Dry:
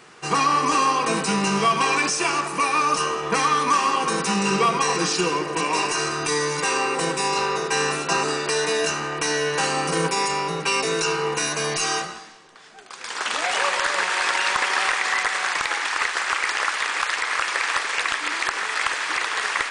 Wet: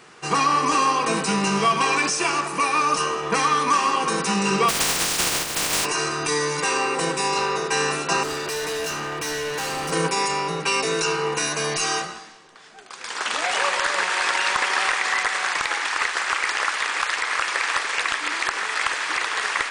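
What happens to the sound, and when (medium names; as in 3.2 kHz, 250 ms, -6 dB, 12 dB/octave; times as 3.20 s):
4.68–5.84 s: spectral contrast reduction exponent 0.15
8.23–9.92 s: hard clipper -25 dBFS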